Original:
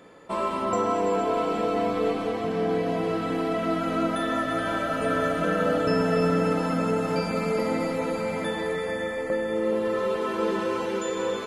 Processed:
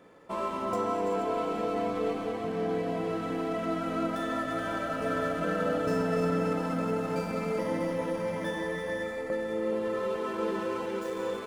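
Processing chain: median filter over 9 samples; 7.59–9.03 ripple EQ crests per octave 1.2, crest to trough 8 dB; gain -5 dB

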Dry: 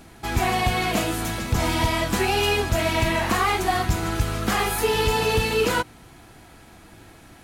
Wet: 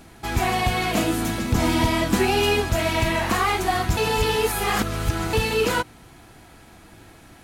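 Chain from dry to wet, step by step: 0.97–2.6 bell 260 Hz +7.5 dB 0.95 oct; 3.97–5.33 reverse

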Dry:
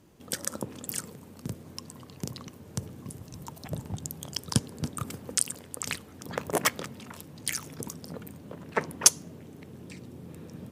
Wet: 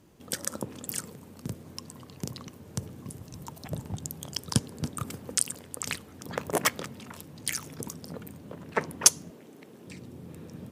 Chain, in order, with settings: 9.3–9.87 HPF 260 Hz 12 dB/oct

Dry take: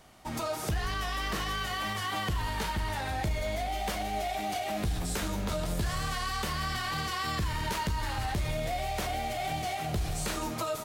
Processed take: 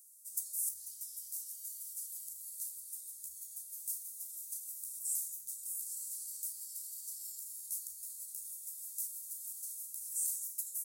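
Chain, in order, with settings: vocal rider within 5 dB 2 s; inverse Chebyshev high-pass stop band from 2800 Hz, stop band 60 dB; gain +8 dB

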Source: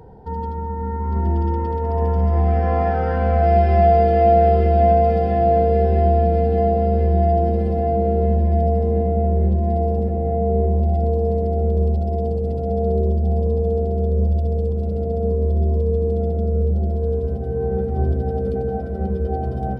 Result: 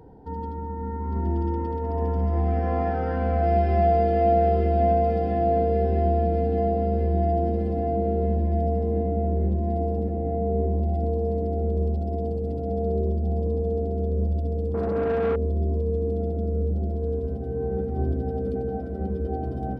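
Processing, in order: bell 290 Hz +12 dB 0.37 oct; 14.74–15.36 overdrive pedal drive 23 dB, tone 2500 Hz, clips at -10 dBFS; gain -6.5 dB

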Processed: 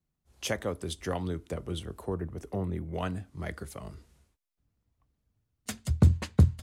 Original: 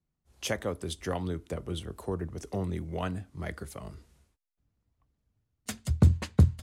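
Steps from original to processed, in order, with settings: 1.97–2.93 bell 5800 Hz -5 dB -> -15 dB 1.8 oct

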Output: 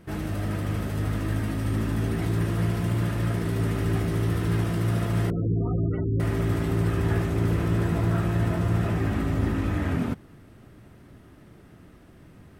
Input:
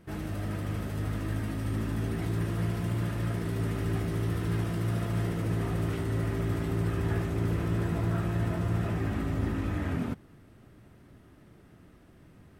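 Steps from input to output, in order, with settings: 5.3–6.2 spectral gate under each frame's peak -20 dB strong; gain +5 dB

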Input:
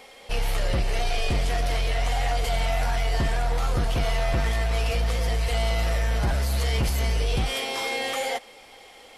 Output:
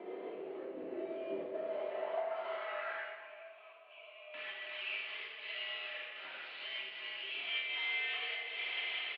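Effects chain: compressor 6:1, threshold -38 dBFS, peak gain reduction 15.5 dB; limiter -39.5 dBFS, peak gain reduction 10 dB; AGC gain up to 3 dB; band-pass sweep 400 Hz -> 2800 Hz, 1.15–3.46; short-mantissa float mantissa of 4-bit; 3.06–4.34 vowel filter a; chopper 1.3 Hz, depth 60%, duty 85%; feedback echo 0.23 s, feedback 52%, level -17.5 dB; shoebox room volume 1000 m³, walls mixed, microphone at 3.1 m; mistuned SSB -63 Hz 330–3600 Hz; gain +9 dB; MP3 40 kbps 24000 Hz

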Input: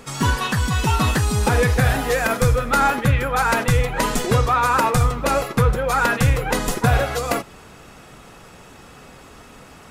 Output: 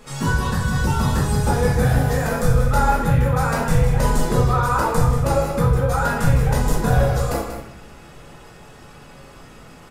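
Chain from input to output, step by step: shoebox room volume 120 m³, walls mixed, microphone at 1.4 m; dynamic EQ 2600 Hz, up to -8 dB, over -31 dBFS, Q 0.95; on a send: echo 0.186 s -9.5 dB; on the sum: gain -7 dB

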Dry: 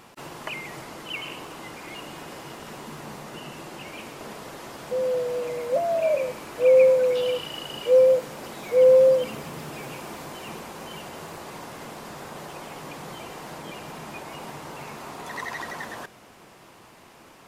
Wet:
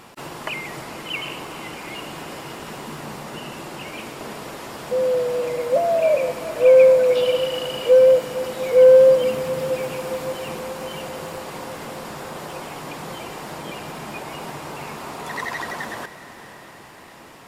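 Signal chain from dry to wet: notch 6200 Hz, Q 23; in parallel at -10 dB: one-sided clip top -17 dBFS; on the sum: diffused feedback echo 0.489 s, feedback 61%, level -14 dB; gain +2.5 dB

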